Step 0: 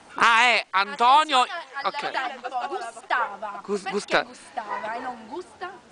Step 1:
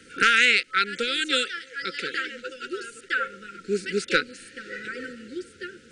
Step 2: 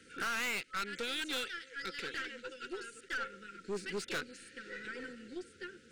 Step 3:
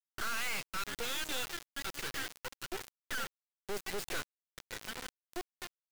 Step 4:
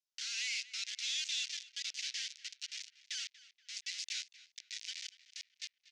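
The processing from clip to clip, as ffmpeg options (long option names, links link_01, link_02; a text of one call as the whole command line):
ffmpeg -i in.wav -af "afftfilt=real='re*(1-between(b*sr/4096,540,1300))':imag='im*(1-between(b*sr/4096,540,1300))':win_size=4096:overlap=0.75,volume=1.5dB" out.wav
ffmpeg -i in.wav -af "aeval=exprs='(tanh(17.8*val(0)+0.35)-tanh(0.35))/17.8':channel_layout=same,volume=-7.5dB" out.wav
ffmpeg -i in.wav -af "acrusher=bits=4:dc=4:mix=0:aa=0.000001,volume=5dB" out.wav
ffmpeg -i in.wav -filter_complex "[0:a]asuperpass=centerf=3600:order=8:qfactor=0.83,aderivative,asplit=2[link_01][link_02];[link_02]adelay=238,lowpass=frequency=3000:poles=1,volume=-15dB,asplit=2[link_03][link_04];[link_04]adelay=238,lowpass=frequency=3000:poles=1,volume=0.47,asplit=2[link_05][link_06];[link_06]adelay=238,lowpass=frequency=3000:poles=1,volume=0.47,asplit=2[link_07][link_08];[link_08]adelay=238,lowpass=frequency=3000:poles=1,volume=0.47[link_09];[link_01][link_03][link_05][link_07][link_09]amix=inputs=5:normalize=0,volume=9.5dB" out.wav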